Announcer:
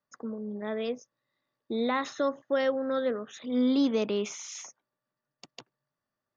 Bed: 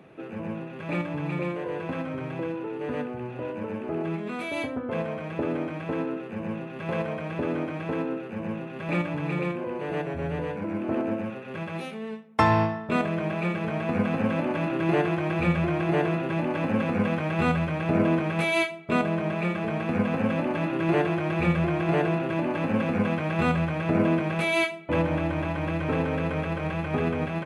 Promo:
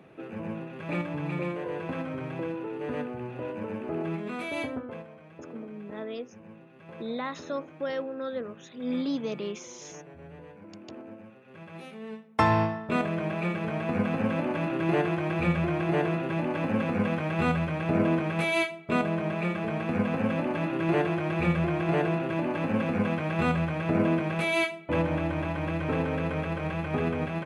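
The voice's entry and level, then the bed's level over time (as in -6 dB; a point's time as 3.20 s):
5.30 s, -5.0 dB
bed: 4.75 s -2 dB
5.08 s -16.5 dB
11.37 s -16.5 dB
12.23 s -2 dB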